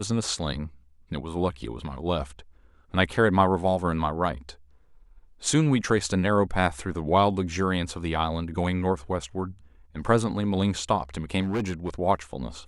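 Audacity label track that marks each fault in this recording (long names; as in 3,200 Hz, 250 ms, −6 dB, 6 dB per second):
11.420000	11.900000	clipping −23 dBFS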